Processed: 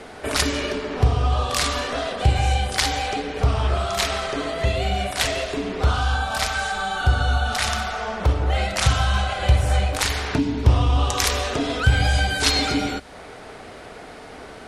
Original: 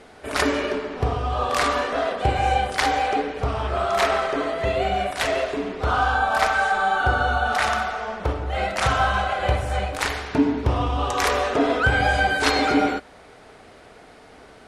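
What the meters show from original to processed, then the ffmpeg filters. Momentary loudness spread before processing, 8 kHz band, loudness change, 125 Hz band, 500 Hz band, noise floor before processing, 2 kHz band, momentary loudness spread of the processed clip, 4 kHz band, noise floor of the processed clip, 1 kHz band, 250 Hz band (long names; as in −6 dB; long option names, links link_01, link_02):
7 LU, +7.5 dB, +0.5 dB, +7.0 dB, −3.5 dB, −47 dBFS, −2.5 dB, 9 LU, +5.0 dB, −40 dBFS, −4.5 dB, −1.5 dB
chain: -filter_complex "[0:a]acrossover=split=180|3000[link_01][link_02][link_03];[link_02]acompressor=threshold=-32dB:ratio=10[link_04];[link_01][link_04][link_03]amix=inputs=3:normalize=0,volume=7.5dB"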